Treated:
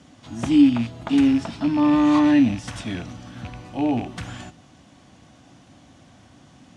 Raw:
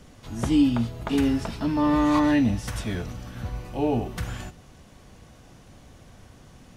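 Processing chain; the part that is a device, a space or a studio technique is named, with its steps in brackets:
car door speaker with a rattle (loose part that buzzes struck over −26 dBFS, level −27 dBFS; loudspeaker in its box 100–9,000 Hz, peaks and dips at 280 Hz +7 dB, 440 Hz −8 dB, 730 Hz +3 dB, 3,300 Hz +3 dB)

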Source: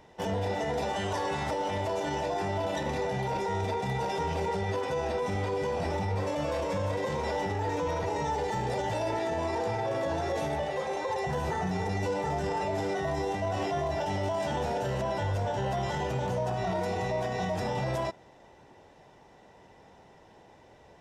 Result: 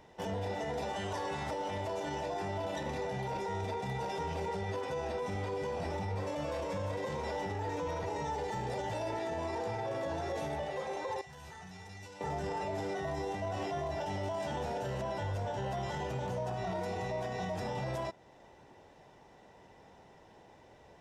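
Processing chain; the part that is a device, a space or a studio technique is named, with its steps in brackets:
0:11.21–0:12.21: guitar amp tone stack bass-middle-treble 5-5-5
parallel compression (in parallel at −3 dB: downward compressor, threshold −43 dBFS, peak gain reduction 15 dB)
on the sum: level −7 dB

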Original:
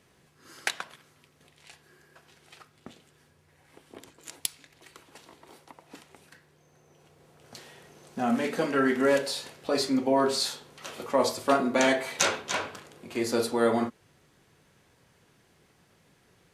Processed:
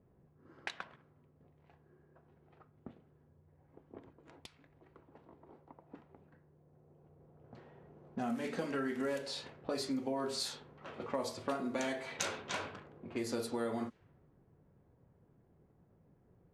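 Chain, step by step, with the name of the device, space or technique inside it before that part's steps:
ASMR close-microphone chain (low-shelf EQ 200 Hz +7 dB; downward compressor 4 to 1, threshold −29 dBFS, peak gain reduction 11 dB; high-shelf EQ 11,000 Hz +5 dB)
low-pass that shuts in the quiet parts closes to 670 Hz, open at −27.5 dBFS
level −5.5 dB

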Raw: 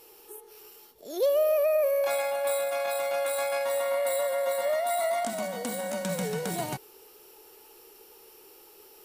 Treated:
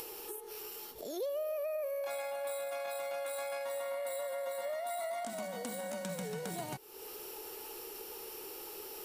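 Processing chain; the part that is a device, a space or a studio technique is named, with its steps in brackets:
upward and downward compression (upward compression, threshold −35 dBFS; downward compressor 3 to 1, threshold −38 dBFS, peak gain reduction 12.5 dB)
level −1 dB

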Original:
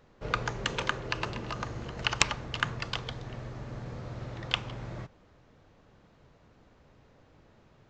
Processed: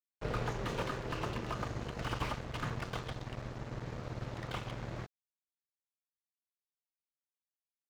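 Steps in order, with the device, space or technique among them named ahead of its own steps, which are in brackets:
early transistor amplifier (dead-zone distortion −44.5 dBFS; slew-rate limiting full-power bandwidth 21 Hz)
level +2.5 dB

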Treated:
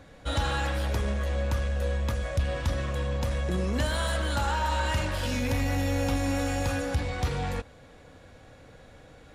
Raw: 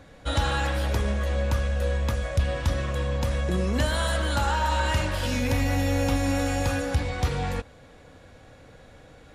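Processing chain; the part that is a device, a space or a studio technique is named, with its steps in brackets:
parallel distortion (in parallel at −7 dB: hard clipping −28.5 dBFS, distortion −7 dB)
on the sum: level −4.5 dB

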